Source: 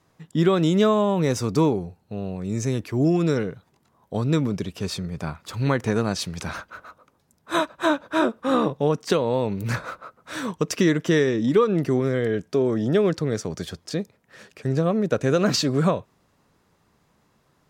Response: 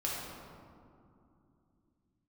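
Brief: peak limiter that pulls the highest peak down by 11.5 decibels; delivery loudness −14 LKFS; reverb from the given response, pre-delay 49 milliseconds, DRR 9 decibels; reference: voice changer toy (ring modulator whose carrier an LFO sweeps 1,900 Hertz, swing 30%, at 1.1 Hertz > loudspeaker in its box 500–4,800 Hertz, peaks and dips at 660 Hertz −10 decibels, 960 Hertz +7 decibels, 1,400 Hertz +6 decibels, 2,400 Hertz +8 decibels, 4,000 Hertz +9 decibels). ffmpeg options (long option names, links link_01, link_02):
-filter_complex "[0:a]alimiter=limit=-20dB:level=0:latency=1,asplit=2[link_01][link_02];[1:a]atrim=start_sample=2205,adelay=49[link_03];[link_02][link_03]afir=irnorm=-1:irlink=0,volume=-14dB[link_04];[link_01][link_04]amix=inputs=2:normalize=0,aeval=exprs='val(0)*sin(2*PI*1900*n/s+1900*0.3/1.1*sin(2*PI*1.1*n/s))':channel_layout=same,highpass=500,equalizer=frequency=660:width_type=q:width=4:gain=-10,equalizer=frequency=960:width_type=q:width=4:gain=7,equalizer=frequency=1400:width_type=q:width=4:gain=6,equalizer=frequency=2400:width_type=q:width=4:gain=8,equalizer=frequency=4000:width_type=q:width=4:gain=9,lowpass=frequency=4800:width=0.5412,lowpass=frequency=4800:width=1.3066,volume=11dB"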